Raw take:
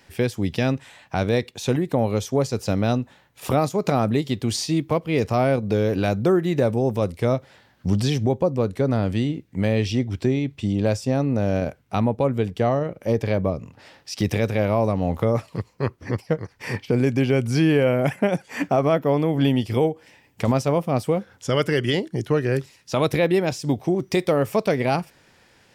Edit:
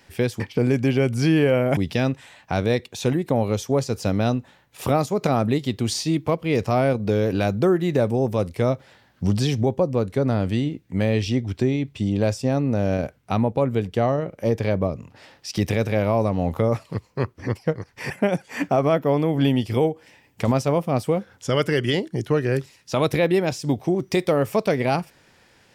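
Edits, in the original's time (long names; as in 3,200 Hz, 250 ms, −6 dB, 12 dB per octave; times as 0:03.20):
0:16.73–0:18.10: move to 0:00.40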